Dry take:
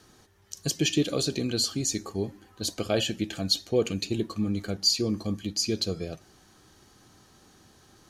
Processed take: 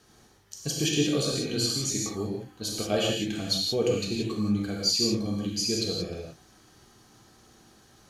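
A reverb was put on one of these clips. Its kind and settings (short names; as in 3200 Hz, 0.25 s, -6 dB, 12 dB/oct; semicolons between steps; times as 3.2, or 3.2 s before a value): non-linear reverb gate 0.2 s flat, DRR -3 dB; gain -4 dB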